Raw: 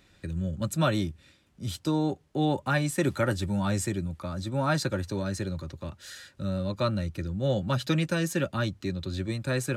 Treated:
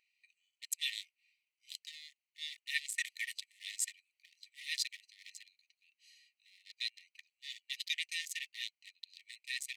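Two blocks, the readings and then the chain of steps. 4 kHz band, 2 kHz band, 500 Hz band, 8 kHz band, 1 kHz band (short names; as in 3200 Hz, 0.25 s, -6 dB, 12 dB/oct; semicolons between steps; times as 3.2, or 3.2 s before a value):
-1.0 dB, -6.0 dB, under -40 dB, -3.0 dB, under -40 dB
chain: Wiener smoothing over 25 samples; brick-wall FIR high-pass 1800 Hz; gain +3 dB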